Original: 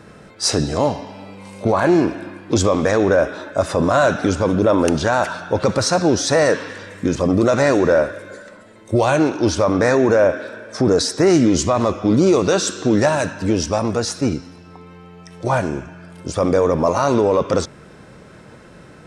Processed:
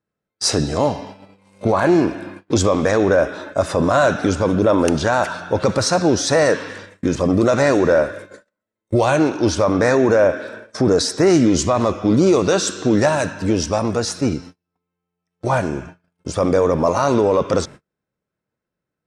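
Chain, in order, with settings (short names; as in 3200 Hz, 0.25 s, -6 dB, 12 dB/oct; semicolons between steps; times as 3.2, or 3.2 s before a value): gate -34 dBFS, range -40 dB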